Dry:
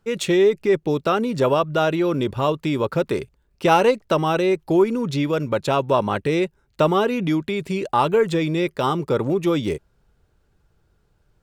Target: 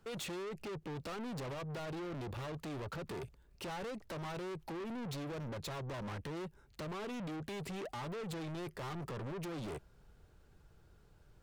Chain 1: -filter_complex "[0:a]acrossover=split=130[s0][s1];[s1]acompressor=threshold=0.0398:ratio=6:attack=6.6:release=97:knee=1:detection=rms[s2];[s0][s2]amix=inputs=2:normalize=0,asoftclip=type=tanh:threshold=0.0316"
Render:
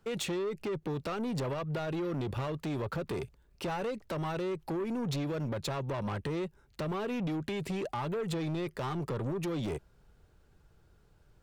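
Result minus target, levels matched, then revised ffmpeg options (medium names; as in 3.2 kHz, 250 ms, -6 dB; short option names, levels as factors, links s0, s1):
saturation: distortion -6 dB
-filter_complex "[0:a]acrossover=split=130[s0][s1];[s1]acompressor=threshold=0.0398:ratio=6:attack=6.6:release=97:knee=1:detection=rms[s2];[s0][s2]amix=inputs=2:normalize=0,asoftclip=type=tanh:threshold=0.00944"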